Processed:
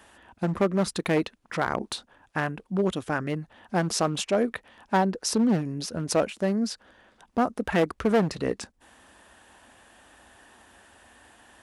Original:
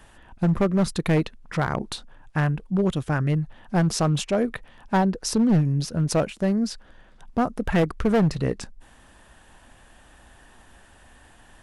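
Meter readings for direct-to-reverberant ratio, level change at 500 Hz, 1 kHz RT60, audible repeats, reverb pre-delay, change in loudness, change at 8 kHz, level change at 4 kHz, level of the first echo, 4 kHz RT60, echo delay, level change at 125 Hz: no reverb, -0.5 dB, no reverb, no echo, no reverb, -3.0 dB, 0.0 dB, 0.0 dB, no echo, no reverb, no echo, -9.0 dB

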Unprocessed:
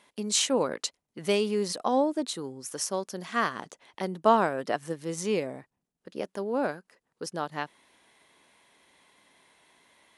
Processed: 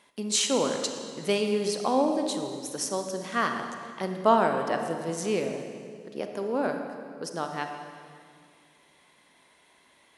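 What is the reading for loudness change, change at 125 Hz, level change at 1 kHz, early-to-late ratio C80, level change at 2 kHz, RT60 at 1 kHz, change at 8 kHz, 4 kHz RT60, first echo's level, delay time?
+1.0 dB, +1.0 dB, +1.0 dB, 6.5 dB, +1.0 dB, 2.0 s, +1.0 dB, 1.9 s, no echo, no echo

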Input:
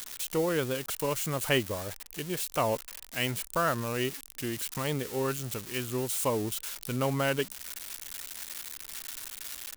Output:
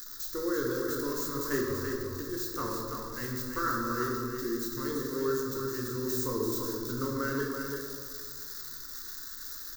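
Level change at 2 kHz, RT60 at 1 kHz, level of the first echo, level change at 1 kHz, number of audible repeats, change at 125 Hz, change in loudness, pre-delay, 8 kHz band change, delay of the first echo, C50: -3.0 dB, 1.7 s, -5.5 dB, -2.0 dB, 1, -4.5 dB, -1.0 dB, 14 ms, -4.5 dB, 336 ms, -0.5 dB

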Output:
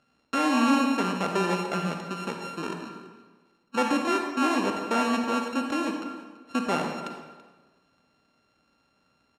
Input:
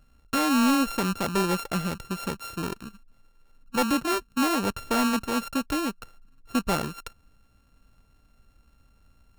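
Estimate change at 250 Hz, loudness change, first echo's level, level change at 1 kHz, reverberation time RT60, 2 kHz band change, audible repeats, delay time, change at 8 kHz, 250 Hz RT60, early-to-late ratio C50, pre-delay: -0.5 dB, -0.5 dB, -19.0 dB, +1.5 dB, 1.3 s, +1.0 dB, 1, 333 ms, -6.0 dB, 1.3 s, 3.5 dB, 39 ms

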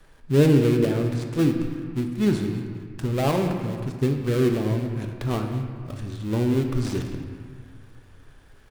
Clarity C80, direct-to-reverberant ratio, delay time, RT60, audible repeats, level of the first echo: 6.5 dB, 3.5 dB, 217 ms, 1.9 s, 1, -17.5 dB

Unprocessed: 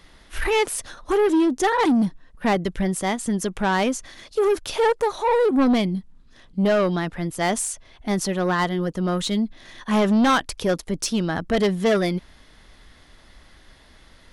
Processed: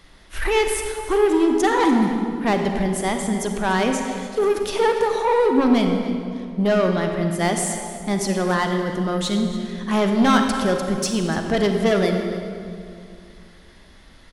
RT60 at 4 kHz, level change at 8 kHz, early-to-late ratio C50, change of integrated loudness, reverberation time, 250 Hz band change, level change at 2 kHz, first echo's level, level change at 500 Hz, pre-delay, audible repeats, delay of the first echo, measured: 1.6 s, +1.0 dB, 4.5 dB, +1.5 dB, 2.4 s, +2.0 dB, +1.5 dB, -17.0 dB, +2.0 dB, 35 ms, 1, 290 ms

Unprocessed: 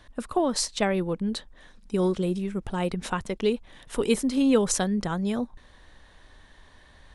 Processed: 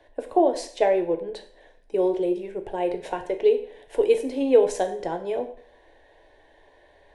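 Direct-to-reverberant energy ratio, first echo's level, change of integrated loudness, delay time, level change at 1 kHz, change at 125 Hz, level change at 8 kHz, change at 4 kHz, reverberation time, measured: 5.5 dB, no echo, +2.5 dB, no echo, +3.5 dB, under -10 dB, -11.0 dB, -7.5 dB, 0.55 s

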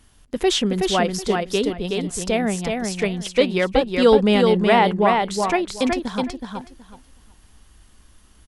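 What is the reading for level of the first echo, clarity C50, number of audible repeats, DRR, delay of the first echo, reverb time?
-4.0 dB, no reverb, 3, no reverb, 372 ms, no reverb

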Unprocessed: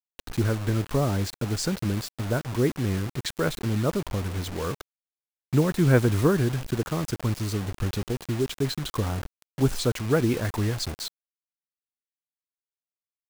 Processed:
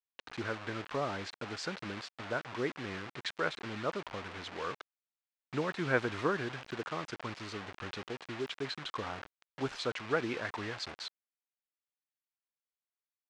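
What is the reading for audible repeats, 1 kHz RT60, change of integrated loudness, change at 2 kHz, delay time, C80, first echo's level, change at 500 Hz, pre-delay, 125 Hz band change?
no echo, no reverb, -11.0 dB, -2.0 dB, no echo, no reverb, no echo, -9.0 dB, no reverb, -20.0 dB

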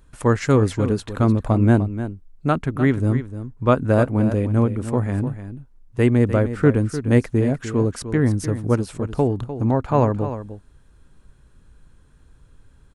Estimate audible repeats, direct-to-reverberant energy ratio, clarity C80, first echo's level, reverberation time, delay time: 1, no reverb, no reverb, -11.5 dB, no reverb, 301 ms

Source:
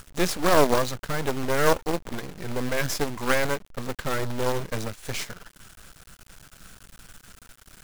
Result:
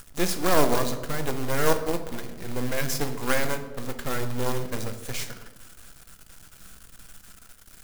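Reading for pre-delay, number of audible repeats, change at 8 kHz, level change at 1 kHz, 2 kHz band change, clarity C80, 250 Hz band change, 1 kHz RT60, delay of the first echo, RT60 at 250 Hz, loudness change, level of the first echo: 3 ms, no echo, +0.5 dB, -2.5 dB, -2.5 dB, 12.5 dB, -0.5 dB, 1.0 s, no echo, 1.7 s, -1.5 dB, no echo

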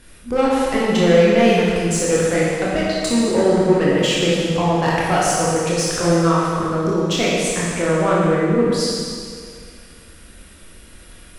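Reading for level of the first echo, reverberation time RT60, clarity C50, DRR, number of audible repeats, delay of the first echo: no echo, 2.1 s, -2.5 dB, -6.5 dB, no echo, no echo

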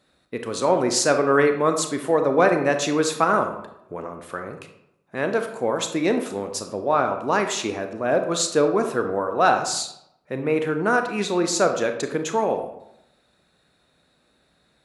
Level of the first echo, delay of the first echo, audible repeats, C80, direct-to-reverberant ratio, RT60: no echo, no echo, no echo, 11.0 dB, 6.0 dB, 0.80 s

